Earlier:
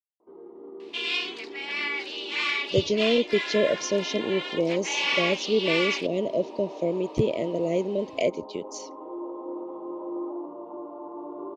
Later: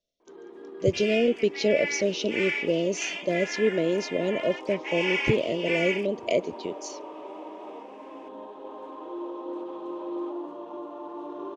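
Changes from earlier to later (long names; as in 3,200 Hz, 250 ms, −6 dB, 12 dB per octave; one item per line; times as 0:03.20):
speech: entry −1.90 s
first sound: remove Savitzky-Golay smoothing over 65 samples
second sound: add phaser with its sweep stopped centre 1,100 Hz, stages 6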